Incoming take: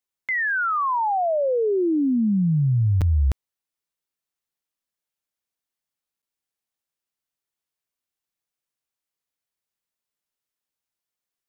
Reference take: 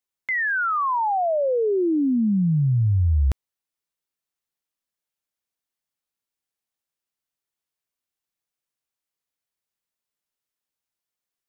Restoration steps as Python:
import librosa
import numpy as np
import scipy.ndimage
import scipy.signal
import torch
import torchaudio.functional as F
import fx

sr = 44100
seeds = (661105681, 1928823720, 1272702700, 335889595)

y = fx.fix_interpolate(x, sr, at_s=(3.01, 6.22), length_ms=6.8)